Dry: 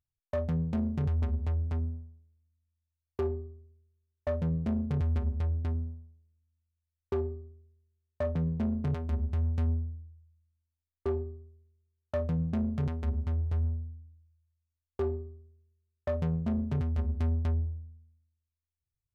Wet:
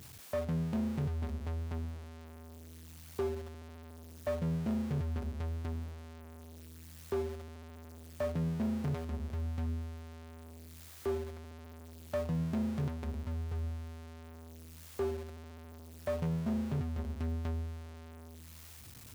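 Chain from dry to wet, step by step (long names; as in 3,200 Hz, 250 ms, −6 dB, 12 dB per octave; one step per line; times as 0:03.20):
converter with a step at zero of −36.5 dBFS
high-pass filter 98 Hz 12 dB per octave
level −4 dB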